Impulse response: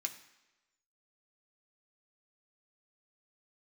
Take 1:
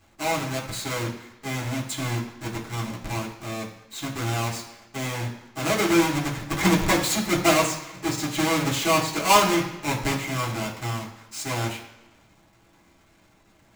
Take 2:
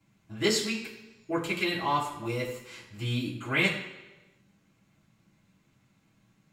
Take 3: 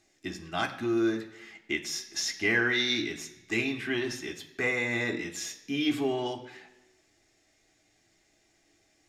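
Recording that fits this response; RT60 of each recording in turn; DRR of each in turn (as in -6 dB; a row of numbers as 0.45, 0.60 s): 3; 1.1, 1.1, 1.1 s; -4.5, -9.5, 3.5 dB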